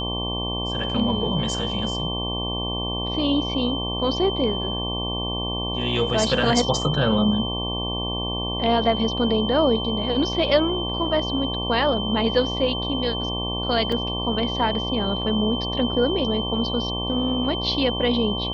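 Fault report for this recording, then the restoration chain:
buzz 60 Hz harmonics 19 -29 dBFS
tone 3100 Hz -28 dBFS
13.92 gap 3.3 ms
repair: de-hum 60 Hz, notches 19; notch 3100 Hz, Q 30; interpolate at 13.92, 3.3 ms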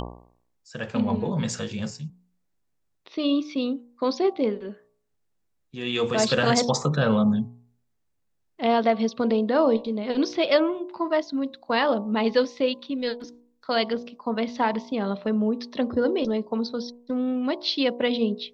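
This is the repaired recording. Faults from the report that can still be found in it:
none

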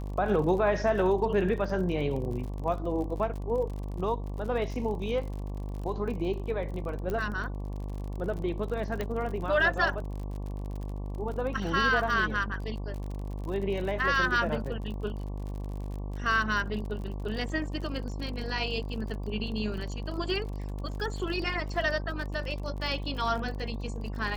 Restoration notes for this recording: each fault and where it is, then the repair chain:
buzz 50 Hz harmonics 23 -35 dBFS
crackle 44/s -37 dBFS
7.1 pop -21 dBFS
9.01 pop -18 dBFS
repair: de-click; de-hum 50 Hz, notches 23

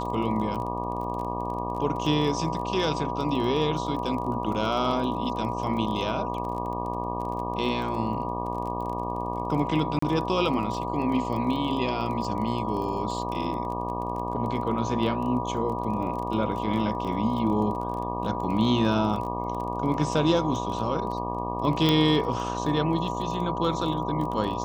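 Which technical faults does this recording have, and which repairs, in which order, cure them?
buzz 60 Hz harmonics 20 -32 dBFS
crackle 23/s -33 dBFS
tone 970 Hz -32 dBFS
9.99–10.02 gap 34 ms
21.89 pop -9 dBFS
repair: de-click; de-hum 60 Hz, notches 20; notch 970 Hz, Q 30; interpolate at 9.99, 34 ms

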